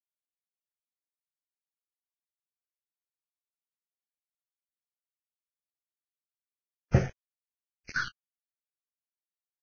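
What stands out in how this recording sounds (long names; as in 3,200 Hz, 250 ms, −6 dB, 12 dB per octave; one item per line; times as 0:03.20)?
a quantiser's noise floor 6 bits, dither none
phaser sweep stages 6, 0.68 Hz, lowest notch 270–1,200 Hz
Ogg Vorbis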